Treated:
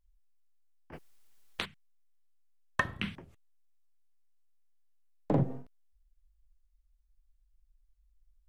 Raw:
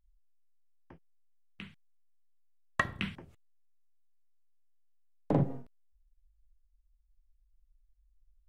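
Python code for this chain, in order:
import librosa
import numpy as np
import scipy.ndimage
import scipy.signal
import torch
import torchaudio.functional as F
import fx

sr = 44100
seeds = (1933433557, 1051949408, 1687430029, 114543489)

y = fx.wow_flutter(x, sr, seeds[0], rate_hz=2.1, depth_cents=71.0)
y = fx.spectral_comp(y, sr, ratio=10.0, at=(0.92, 1.64), fade=0.02)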